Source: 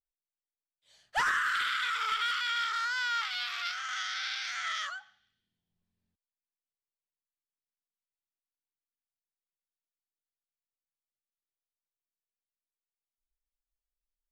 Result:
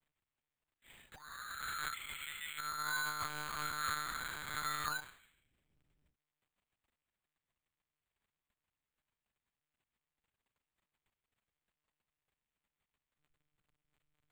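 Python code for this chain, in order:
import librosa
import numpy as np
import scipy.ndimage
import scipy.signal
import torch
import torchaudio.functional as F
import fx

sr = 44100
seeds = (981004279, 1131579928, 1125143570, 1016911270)

y = fx.env_lowpass_down(x, sr, base_hz=1000.0, full_db=-32.0)
y = fx.spec_box(y, sr, start_s=1.93, length_s=0.66, low_hz=380.0, high_hz=1900.0, gain_db=-24)
y = fx.high_shelf(y, sr, hz=2300.0, db=-8.0, at=(2.78, 4.84))
y = fx.over_compress(y, sr, threshold_db=-43.0, ratio=-0.5)
y = fx.dmg_crackle(y, sr, seeds[0], per_s=12.0, level_db=-59.0)
y = fx.lpc_monotone(y, sr, seeds[1], pitch_hz=150.0, order=8)
y = np.repeat(y[::8], 8)[:len(y)]
y = fx.end_taper(y, sr, db_per_s=230.0)
y = F.gain(torch.from_numpy(y), 4.0).numpy()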